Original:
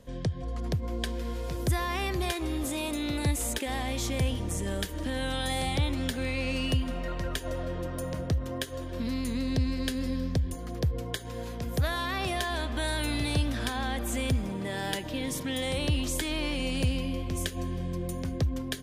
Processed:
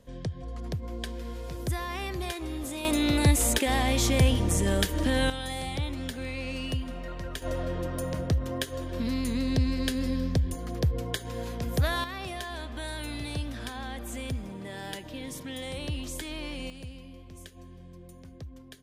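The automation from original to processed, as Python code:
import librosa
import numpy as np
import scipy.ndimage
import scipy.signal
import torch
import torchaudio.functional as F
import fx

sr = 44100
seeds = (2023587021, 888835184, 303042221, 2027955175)

y = fx.gain(x, sr, db=fx.steps((0.0, -3.5), (2.85, 6.5), (5.3, -4.0), (7.42, 2.0), (12.04, -6.0), (16.7, -15.0)))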